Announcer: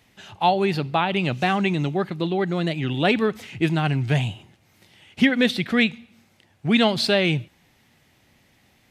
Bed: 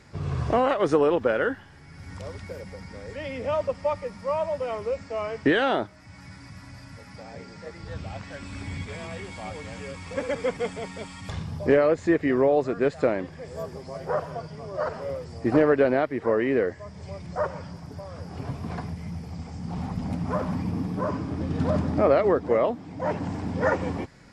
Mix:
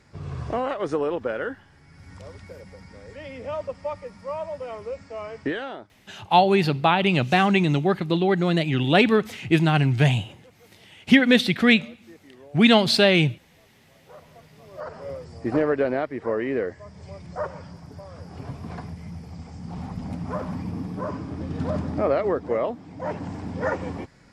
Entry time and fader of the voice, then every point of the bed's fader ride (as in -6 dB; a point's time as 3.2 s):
5.90 s, +2.5 dB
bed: 5.42 s -4.5 dB
6.34 s -27.5 dB
13.75 s -27.5 dB
15.09 s -2.5 dB